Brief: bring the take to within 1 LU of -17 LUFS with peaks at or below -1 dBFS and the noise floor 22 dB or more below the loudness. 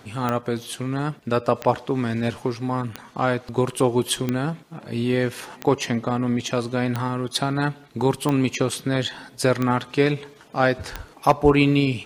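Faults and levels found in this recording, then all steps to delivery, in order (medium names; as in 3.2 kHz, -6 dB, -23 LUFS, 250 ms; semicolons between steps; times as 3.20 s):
clicks found 9; loudness -23.5 LUFS; peak level -4.0 dBFS; loudness target -17.0 LUFS
-> de-click; trim +6.5 dB; peak limiter -1 dBFS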